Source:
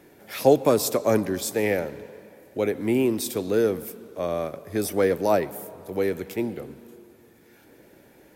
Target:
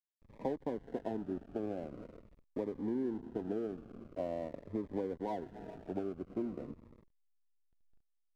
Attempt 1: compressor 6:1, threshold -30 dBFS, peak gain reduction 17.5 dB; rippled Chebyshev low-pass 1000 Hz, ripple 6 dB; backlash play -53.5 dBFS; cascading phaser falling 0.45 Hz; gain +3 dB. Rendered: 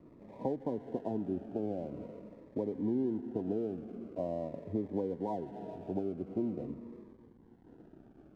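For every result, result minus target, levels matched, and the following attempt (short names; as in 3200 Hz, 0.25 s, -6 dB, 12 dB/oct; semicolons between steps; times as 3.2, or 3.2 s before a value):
backlash: distortion -12 dB; 125 Hz band +2.5 dB
compressor 6:1, threshold -30 dBFS, peak gain reduction 17.5 dB; rippled Chebyshev low-pass 1000 Hz, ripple 6 dB; backlash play -42 dBFS; cascading phaser falling 0.45 Hz; gain +3 dB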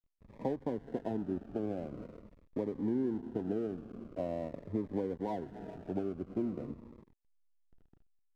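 125 Hz band +3.0 dB
compressor 6:1, threshold -30 dBFS, peak gain reduction 17.5 dB; rippled Chebyshev low-pass 1000 Hz, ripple 6 dB; bell 120 Hz -6.5 dB 2.1 oct; backlash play -42 dBFS; cascading phaser falling 0.45 Hz; gain +3 dB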